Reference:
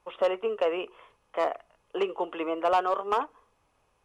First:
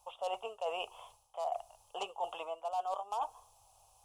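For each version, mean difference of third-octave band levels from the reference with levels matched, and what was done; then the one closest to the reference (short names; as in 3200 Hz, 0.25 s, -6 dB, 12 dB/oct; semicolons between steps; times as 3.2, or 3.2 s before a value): 8.5 dB: EQ curve 110 Hz 0 dB, 170 Hz -16 dB, 340 Hz -23 dB, 770 Hz +9 dB, 1900 Hz -21 dB, 2800 Hz 0 dB, 7500 Hz +14 dB; reverse; compressor 8:1, threshold -36 dBFS, peak gain reduction 21 dB; reverse; gain +2 dB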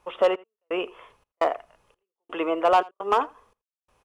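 6.5 dB: step gate "xx..xxx.x" 85 bpm -60 dB; on a send: echo 83 ms -23.5 dB; on the sum: gain +5 dB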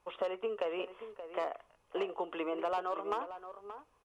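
3.0 dB: compressor 4:1, threshold -29 dBFS, peak gain reduction 8.5 dB; outdoor echo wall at 99 m, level -11 dB; gain -3 dB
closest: third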